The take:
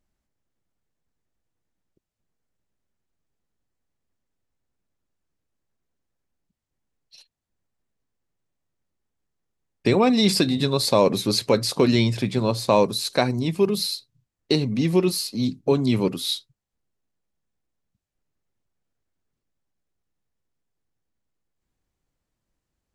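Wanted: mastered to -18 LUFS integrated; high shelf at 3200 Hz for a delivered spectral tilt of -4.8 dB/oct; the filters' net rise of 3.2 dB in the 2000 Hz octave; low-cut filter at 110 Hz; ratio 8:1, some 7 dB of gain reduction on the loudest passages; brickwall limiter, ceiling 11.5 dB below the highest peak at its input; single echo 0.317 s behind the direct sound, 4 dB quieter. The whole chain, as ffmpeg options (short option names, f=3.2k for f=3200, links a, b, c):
-af "highpass=110,equalizer=f=2k:t=o:g=6,highshelf=f=3.2k:g=-5.5,acompressor=threshold=-20dB:ratio=8,alimiter=limit=-20dB:level=0:latency=1,aecho=1:1:317:0.631,volume=10.5dB"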